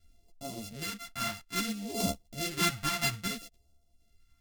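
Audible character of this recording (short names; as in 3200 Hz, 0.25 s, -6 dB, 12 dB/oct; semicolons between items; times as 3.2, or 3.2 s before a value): a buzz of ramps at a fixed pitch in blocks of 64 samples; phasing stages 2, 0.6 Hz, lowest notch 420–1600 Hz; random-step tremolo; a shimmering, thickened sound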